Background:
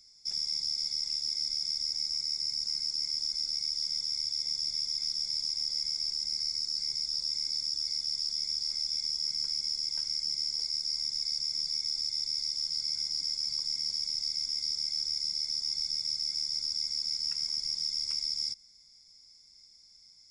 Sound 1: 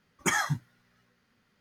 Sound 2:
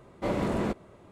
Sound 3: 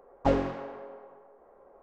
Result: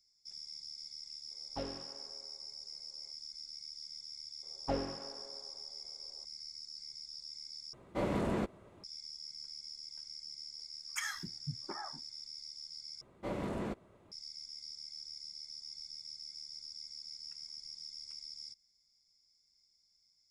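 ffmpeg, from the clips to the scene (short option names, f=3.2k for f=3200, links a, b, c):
-filter_complex "[3:a]asplit=2[a][b];[2:a]asplit=2[c][d];[0:a]volume=-15dB[e];[a]lowpass=f=4.1k:t=q:w=2.4[f];[1:a]acrossover=split=260|1200[g][h][i];[g]adelay=270[j];[h]adelay=730[k];[j][k][i]amix=inputs=3:normalize=0[l];[e]asplit=3[m][n][o];[m]atrim=end=7.734[p];[c]atrim=end=1.11,asetpts=PTS-STARTPTS,volume=-5dB[q];[n]atrim=start=8.836:end=13.014[r];[d]atrim=end=1.11,asetpts=PTS-STARTPTS,volume=-9.5dB[s];[o]atrim=start=14.116[t];[f]atrim=end=1.82,asetpts=PTS-STARTPTS,volume=-17dB,afade=t=in:d=0.004:c=hsin,afade=t=out:st=1.816:d=0.004:c=hsin,adelay=1310[u];[b]atrim=end=1.82,asetpts=PTS-STARTPTS,volume=-10.5dB,afade=t=in:d=0.004:c=hsin,afade=t=out:st=1.816:d=0.004:c=hsin,adelay=4430[v];[l]atrim=end=1.6,asetpts=PTS-STARTPTS,volume=-9.5dB,afade=t=in:d=0.004:c=hsin,afade=t=out:st=1.596:d=0.004:c=hsin,adelay=10700[w];[p][q]acrossfade=d=0.004:c1=hsin:c2=hsin[x];[x][r]acrossfade=d=0.004:c1=hsin:c2=hsin[y];[y][s]acrossfade=d=0.004:c1=hsin:c2=hsin[z];[z][t]acrossfade=d=0.004:c1=hsin:c2=hsin[aa];[aa][u][v][w]amix=inputs=4:normalize=0"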